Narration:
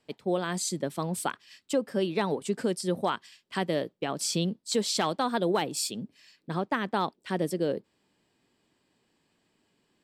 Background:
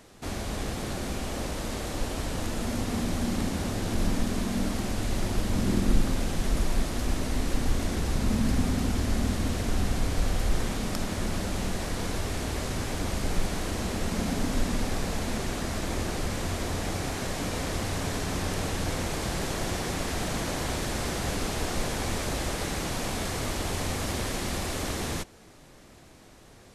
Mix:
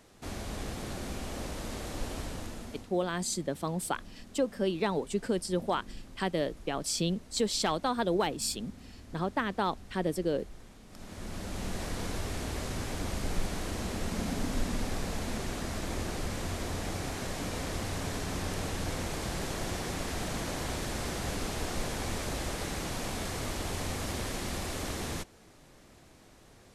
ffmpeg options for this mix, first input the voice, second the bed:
-filter_complex "[0:a]adelay=2650,volume=-2dB[a];[1:a]volume=13dB,afade=t=out:st=2.16:d=0.75:silence=0.133352,afade=t=in:st=10.88:d=0.94:silence=0.11885[b];[a][b]amix=inputs=2:normalize=0"

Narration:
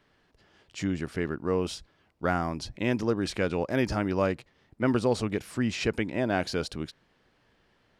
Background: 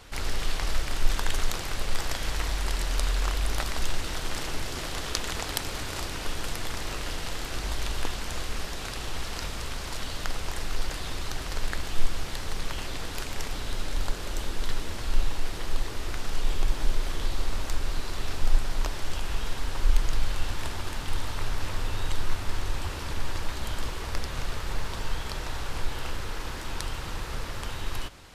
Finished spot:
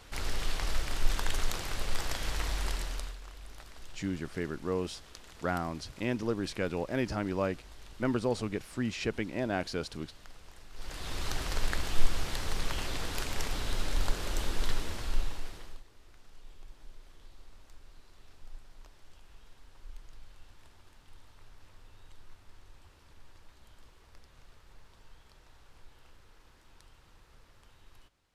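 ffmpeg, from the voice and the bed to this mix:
-filter_complex "[0:a]adelay=3200,volume=-5dB[a];[1:a]volume=15.5dB,afade=t=out:st=2.65:d=0.53:silence=0.149624,afade=t=in:st=10.73:d=0.56:silence=0.105925,afade=t=out:st=14.63:d=1.2:silence=0.0595662[b];[a][b]amix=inputs=2:normalize=0"

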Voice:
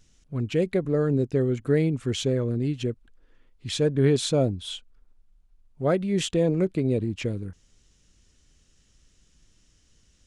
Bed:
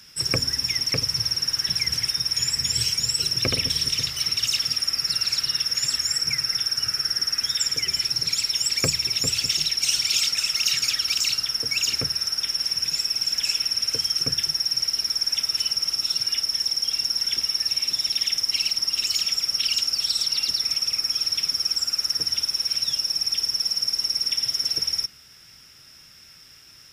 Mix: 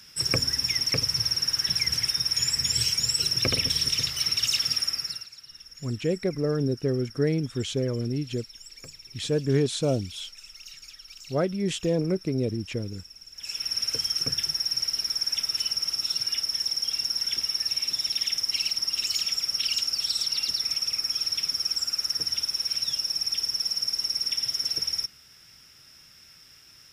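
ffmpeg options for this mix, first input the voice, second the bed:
-filter_complex "[0:a]adelay=5500,volume=-2.5dB[a];[1:a]volume=17.5dB,afade=t=out:st=4.79:d=0.49:silence=0.0891251,afade=t=in:st=13.34:d=0.43:silence=0.112202[b];[a][b]amix=inputs=2:normalize=0"

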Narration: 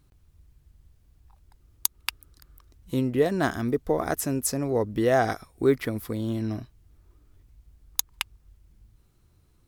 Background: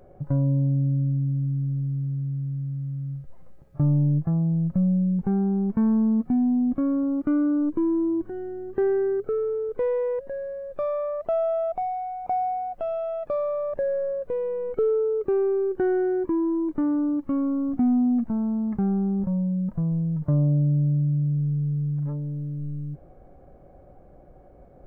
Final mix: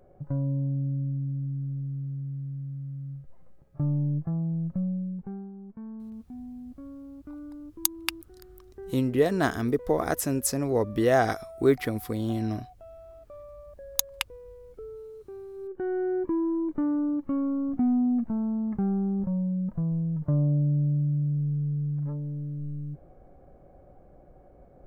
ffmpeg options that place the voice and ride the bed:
-filter_complex "[0:a]adelay=6000,volume=0dB[a];[1:a]volume=10.5dB,afade=t=out:st=4.67:d=0.85:silence=0.211349,afade=t=in:st=15.53:d=0.64:silence=0.149624[b];[a][b]amix=inputs=2:normalize=0"

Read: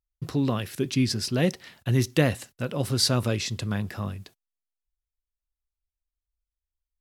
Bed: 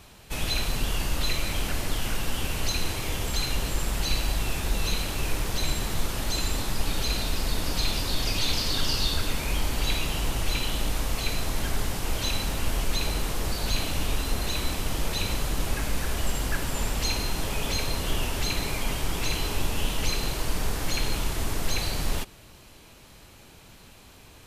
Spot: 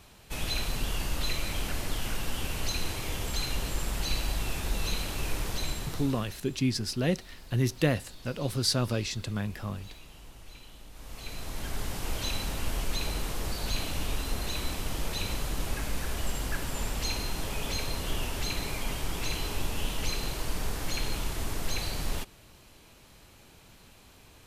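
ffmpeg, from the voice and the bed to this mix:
-filter_complex "[0:a]adelay=5650,volume=-4dB[a];[1:a]volume=13.5dB,afade=t=out:st=5.49:d=0.91:silence=0.125893,afade=t=in:st=10.92:d=1.1:silence=0.133352[b];[a][b]amix=inputs=2:normalize=0"

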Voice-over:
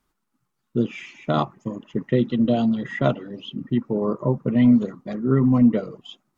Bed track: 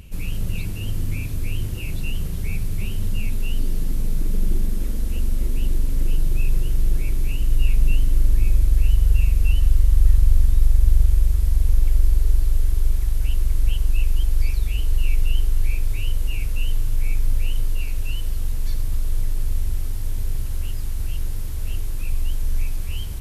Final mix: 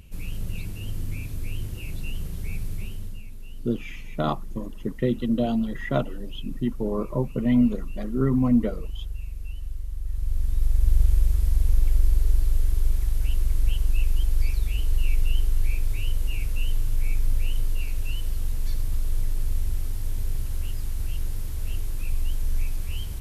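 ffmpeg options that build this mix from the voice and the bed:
-filter_complex "[0:a]adelay=2900,volume=-4dB[a];[1:a]volume=8dB,afade=t=out:st=2.71:d=0.53:silence=0.281838,afade=t=in:st=10.05:d=1:silence=0.199526[b];[a][b]amix=inputs=2:normalize=0"

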